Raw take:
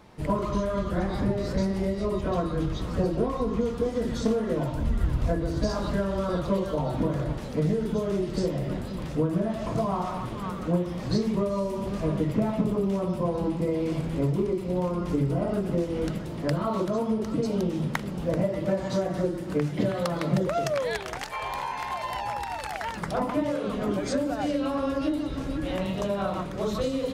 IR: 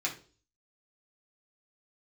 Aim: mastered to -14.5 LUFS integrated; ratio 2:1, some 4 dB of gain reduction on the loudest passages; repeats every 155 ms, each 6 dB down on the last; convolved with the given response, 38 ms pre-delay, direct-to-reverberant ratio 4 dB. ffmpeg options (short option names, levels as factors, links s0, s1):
-filter_complex "[0:a]acompressor=threshold=0.0447:ratio=2,aecho=1:1:155|310|465|620|775|930:0.501|0.251|0.125|0.0626|0.0313|0.0157,asplit=2[s0][s1];[1:a]atrim=start_sample=2205,adelay=38[s2];[s1][s2]afir=irnorm=-1:irlink=0,volume=0.335[s3];[s0][s3]amix=inputs=2:normalize=0,volume=4.73"